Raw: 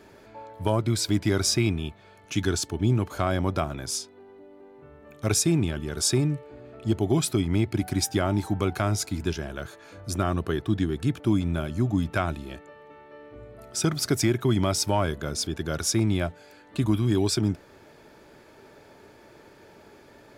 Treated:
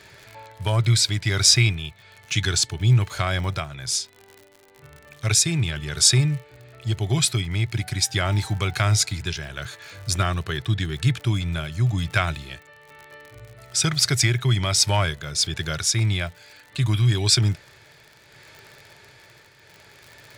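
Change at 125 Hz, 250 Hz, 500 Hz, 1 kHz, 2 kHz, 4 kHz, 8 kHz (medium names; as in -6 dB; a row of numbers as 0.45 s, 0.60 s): +5.5 dB, -5.0 dB, -4.0 dB, +1.5 dB, +8.0 dB, +9.5 dB, +7.0 dB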